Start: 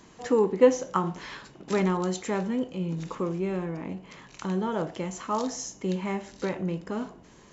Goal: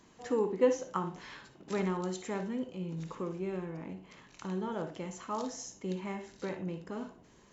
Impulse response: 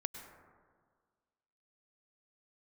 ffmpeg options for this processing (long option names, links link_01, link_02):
-filter_complex "[1:a]atrim=start_sample=2205,atrim=end_sample=6174,asetrate=79380,aresample=44100[link_01];[0:a][link_01]afir=irnorm=-1:irlink=0,volume=-1dB"